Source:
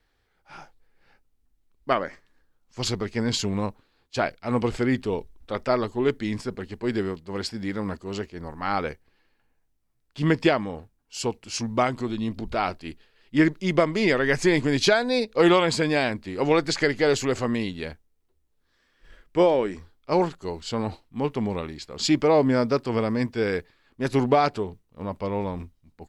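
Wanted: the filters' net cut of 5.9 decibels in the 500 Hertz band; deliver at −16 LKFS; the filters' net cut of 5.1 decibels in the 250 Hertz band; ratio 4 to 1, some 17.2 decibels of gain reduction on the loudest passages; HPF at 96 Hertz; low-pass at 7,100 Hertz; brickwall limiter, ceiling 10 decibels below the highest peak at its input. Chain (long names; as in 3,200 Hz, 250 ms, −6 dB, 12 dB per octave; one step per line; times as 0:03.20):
high-pass filter 96 Hz
low-pass filter 7,100 Hz
parametric band 250 Hz −4.5 dB
parametric band 500 Hz −6 dB
downward compressor 4 to 1, threshold −40 dBFS
level +29.5 dB
brickwall limiter −4 dBFS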